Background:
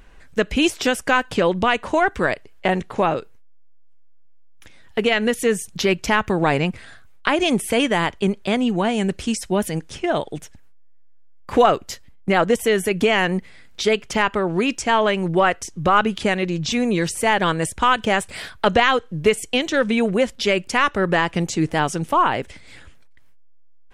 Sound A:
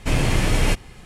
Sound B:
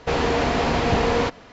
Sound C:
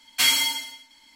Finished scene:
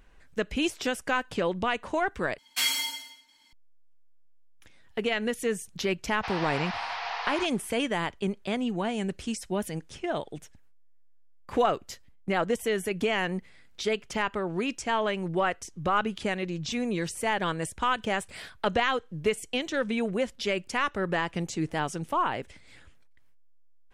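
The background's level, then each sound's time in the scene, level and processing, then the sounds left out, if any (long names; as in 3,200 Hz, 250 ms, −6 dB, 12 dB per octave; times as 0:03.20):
background −9.5 dB
0:02.38: overwrite with C −7 dB + low-shelf EQ 130 Hz −10 dB
0:06.16: mix in B −7.5 dB + elliptic band-pass filter 790–5,300 Hz
not used: A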